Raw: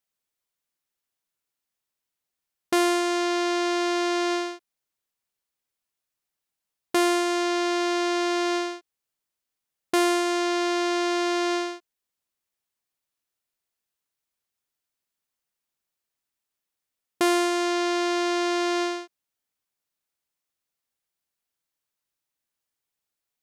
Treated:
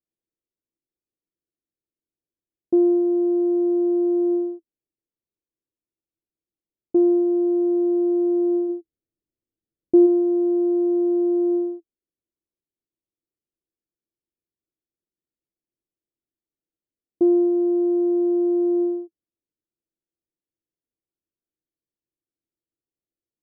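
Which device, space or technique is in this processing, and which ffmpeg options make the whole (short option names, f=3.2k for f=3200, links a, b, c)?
under water: -filter_complex "[0:a]asplit=3[a][b][c];[a]afade=t=out:st=8.68:d=0.02[d];[b]lowshelf=f=350:g=7.5,afade=t=in:st=8.68:d=0.02,afade=t=out:st=10.05:d=0.02[e];[c]afade=t=in:st=10.05:d=0.02[f];[d][e][f]amix=inputs=3:normalize=0,lowpass=f=510:w=0.5412,lowpass=f=510:w=1.3066,equalizer=f=330:t=o:w=0.3:g=9.5"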